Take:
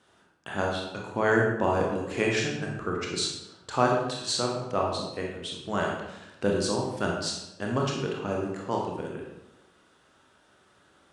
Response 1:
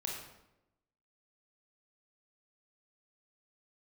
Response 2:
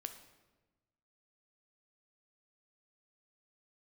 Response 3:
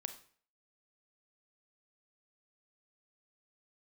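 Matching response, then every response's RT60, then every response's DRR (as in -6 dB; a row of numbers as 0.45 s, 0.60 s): 1; 0.90 s, 1.2 s, 0.50 s; -1.5 dB, 7.5 dB, 8.0 dB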